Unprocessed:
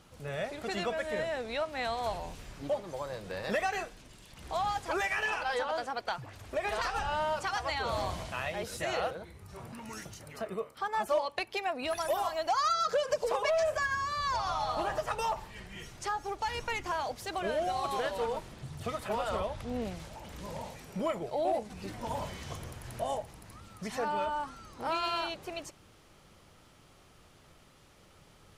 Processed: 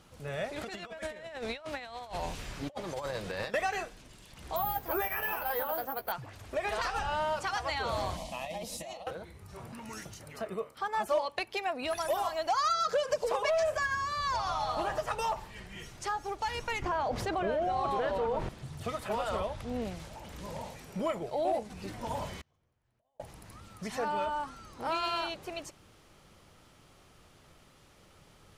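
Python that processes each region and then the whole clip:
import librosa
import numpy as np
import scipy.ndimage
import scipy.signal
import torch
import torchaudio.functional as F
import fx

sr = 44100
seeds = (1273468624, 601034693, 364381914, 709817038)

y = fx.chain(x, sr, fx.over_compress(threshold_db=-39.0, ratio=-0.5),
    fx.peak_eq(hz=2800.0, db=3.5, octaves=2.9), at=(0.56, 3.54))
y = fx.chain(y, sr, fx.resample_bad(factor=3, down='filtered', up='zero_stuff'),
    fx.high_shelf(hz=2000.0, db=-11.0),
    fx.doubler(ms=15.0, db=-8), at=(4.56, 6.12))
y = fx.chain(y, sr, fx.over_compress(threshold_db=-36.0, ratio=-0.5),
    fx.fixed_phaser(hz=400.0, stages=6), at=(8.17, 9.07))
y = fx.chain(y, sr, fx.lowpass(hz=1300.0, slope=6),
    fx.env_flatten(amount_pct=70), at=(16.82, 18.49))
y = fx.chain(y, sr, fx.lowpass(hz=3500.0, slope=6),
    fx.over_compress(threshold_db=-40.0, ratio=-1.0),
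    fx.gate_flip(shuts_db=-38.0, range_db=-36), at=(22.41, 23.2))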